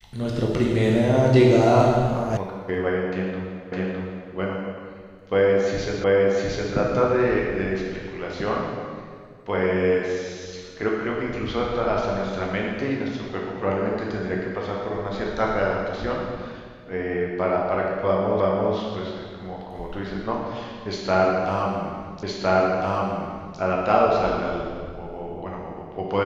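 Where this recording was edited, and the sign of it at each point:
0:02.37: cut off before it has died away
0:03.72: the same again, the last 0.61 s
0:06.04: the same again, the last 0.71 s
0:18.40: the same again, the last 0.34 s
0:22.23: the same again, the last 1.36 s

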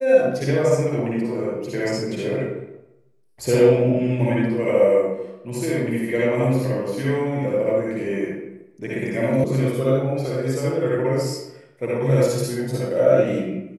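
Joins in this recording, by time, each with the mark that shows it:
0:09.44: cut off before it has died away

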